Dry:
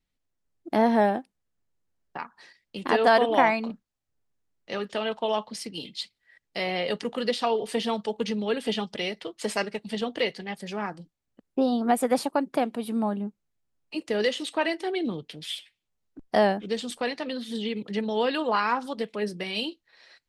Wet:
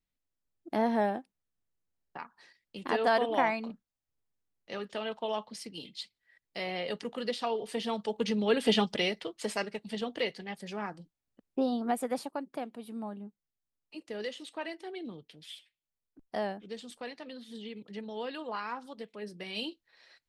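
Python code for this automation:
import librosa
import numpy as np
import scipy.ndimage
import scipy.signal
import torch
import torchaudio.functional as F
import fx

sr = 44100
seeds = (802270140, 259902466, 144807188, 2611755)

y = fx.gain(x, sr, db=fx.line((7.76, -7.0), (8.81, 3.5), (9.52, -5.5), (11.64, -5.5), (12.48, -12.5), (19.22, -12.5), (19.66, -5.5)))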